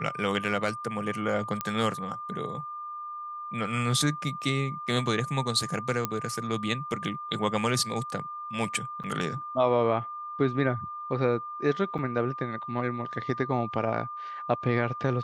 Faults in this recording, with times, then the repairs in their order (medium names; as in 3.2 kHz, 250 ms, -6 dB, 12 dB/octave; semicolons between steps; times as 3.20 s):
whine 1.2 kHz -35 dBFS
1.61 s: pop -13 dBFS
6.05 s: pop -11 dBFS
9.03–9.04 s: dropout 7.7 ms
11.98–11.99 s: dropout 7.2 ms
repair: de-click; band-stop 1.2 kHz, Q 30; interpolate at 9.03 s, 7.7 ms; interpolate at 11.98 s, 7.2 ms